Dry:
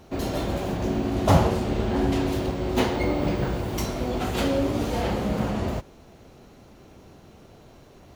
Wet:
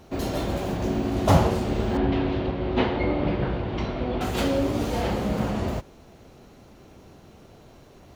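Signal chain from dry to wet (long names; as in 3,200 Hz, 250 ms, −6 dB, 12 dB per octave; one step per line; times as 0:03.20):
0:01.97–0:04.21: low-pass filter 3,700 Hz 24 dB per octave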